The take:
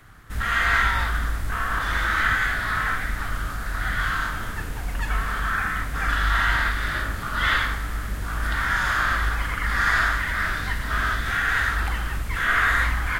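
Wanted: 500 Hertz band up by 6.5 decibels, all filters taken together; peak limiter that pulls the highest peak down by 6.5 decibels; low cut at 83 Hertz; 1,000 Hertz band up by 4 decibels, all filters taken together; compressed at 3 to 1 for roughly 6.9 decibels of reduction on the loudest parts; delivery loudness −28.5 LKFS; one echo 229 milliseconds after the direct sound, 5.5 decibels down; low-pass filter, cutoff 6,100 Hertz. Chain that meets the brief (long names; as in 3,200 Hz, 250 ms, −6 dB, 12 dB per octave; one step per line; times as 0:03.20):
high-pass filter 83 Hz
low-pass filter 6,100 Hz
parametric band 500 Hz +7 dB
parametric band 1,000 Hz +4.5 dB
downward compressor 3 to 1, threshold −24 dBFS
brickwall limiter −19 dBFS
single-tap delay 229 ms −5.5 dB
level −1.5 dB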